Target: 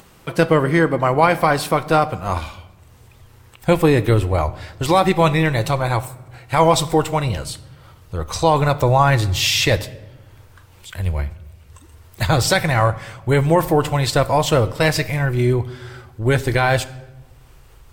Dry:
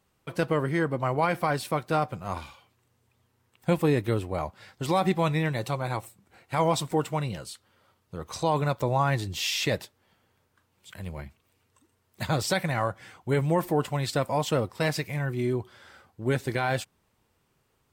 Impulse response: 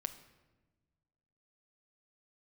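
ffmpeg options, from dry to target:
-filter_complex "[0:a]asubboost=boost=11.5:cutoff=53,acompressor=mode=upward:threshold=-48dB:ratio=2.5,asplit=2[a][b];[1:a]atrim=start_sample=2205,asetrate=48510,aresample=44100[c];[b][c]afir=irnorm=-1:irlink=0,volume=5.5dB[d];[a][d]amix=inputs=2:normalize=0,volume=3dB"

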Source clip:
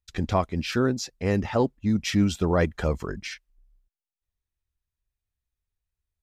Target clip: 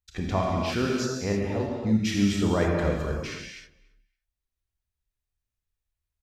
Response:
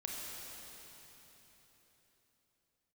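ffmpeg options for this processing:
-filter_complex "[0:a]asettb=1/sr,asplit=3[a][b][c];[a]atrim=end=1.324[d];[b]atrim=start=1.32:end=1.8,asetpts=PTS-STARTPTS,afade=t=in:d=0.004:c=qsin,afade=t=out:st=0.476:d=0.004:c=qsin,acrossover=split=860|2900[e][f][g];[e]acompressor=threshold=-24dB:ratio=4[h];[f]acompressor=threshold=-47dB:ratio=4[i];[g]acompressor=threshold=-51dB:ratio=4[j];[h][i][j]amix=inputs=3:normalize=0[k];[c]atrim=start=1.796[l];[d][k]acrossfade=d=0.004:c1=hsin:c2=qsin[m];[m][l]acrossfade=d=0.004:c1=qsin:c2=hsin,asplit=2[n][o];[o]adelay=283,lowpass=f=3.8k:p=1,volume=-23dB,asplit=2[p][q];[q]adelay=283,lowpass=f=3.8k:p=1,volume=0.22[r];[n][p][r]amix=inputs=3:normalize=0[s];[1:a]atrim=start_sample=2205,afade=t=out:st=0.38:d=0.01,atrim=end_sample=17199[t];[s][t]afir=irnorm=-1:irlink=0"

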